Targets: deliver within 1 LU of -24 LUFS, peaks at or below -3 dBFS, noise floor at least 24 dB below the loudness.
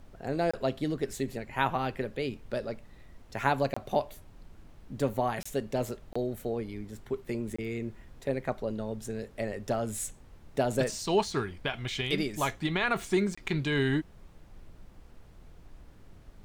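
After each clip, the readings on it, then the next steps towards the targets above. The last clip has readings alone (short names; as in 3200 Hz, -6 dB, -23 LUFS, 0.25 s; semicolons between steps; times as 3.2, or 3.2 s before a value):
dropouts 6; longest dropout 25 ms; noise floor -54 dBFS; noise floor target -56 dBFS; loudness -32.0 LUFS; peak -8.5 dBFS; loudness target -24.0 LUFS
-> interpolate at 0.51/3.74/5.43/6.13/7.56/13.35, 25 ms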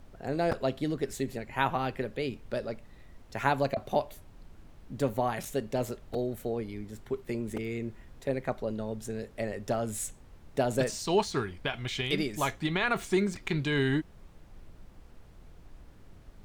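dropouts 0; noise floor -54 dBFS; noise floor target -56 dBFS
-> noise print and reduce 6 dB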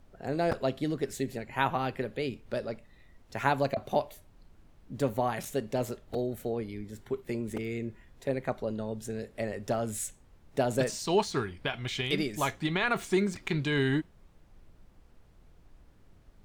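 noise floor -59 dBFS; loudness -32.0 LUFS; peak -8.5 dBFS; loudness target -24.0 LUFS
-> gain +8 dB; limiter -3 dBFS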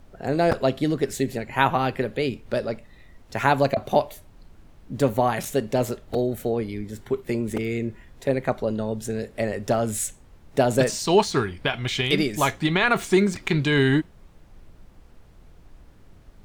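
loudness -24.0 LUFS; peak -3.0 dBFS; noise floor -51 dBFS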